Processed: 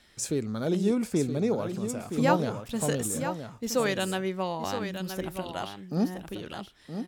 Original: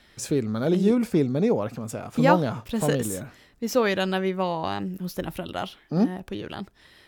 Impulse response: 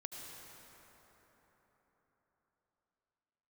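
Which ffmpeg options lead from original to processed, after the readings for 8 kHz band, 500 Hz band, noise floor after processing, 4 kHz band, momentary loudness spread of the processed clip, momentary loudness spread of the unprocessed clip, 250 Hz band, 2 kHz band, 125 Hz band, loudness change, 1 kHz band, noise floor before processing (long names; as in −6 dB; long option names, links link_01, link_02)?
+2.5 dB, −4.5 dB, −56 dBFS, −2.0 dB, 10 LU, 13 LU, −4.5 dB, −4.0 dB, −4.5 dB, −4.0 dB, −4.5 dB, −57 dBFS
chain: -filter_complex "[0:a]equalizer=frequency=7900:width=0.83:gain=7.5,asplit=2[link_01][link_02];[link_02]aecho=0:1:971:0.376[link_03];[link_01][link_03]amix=inputs=2:normalize=0,volume=-5dB"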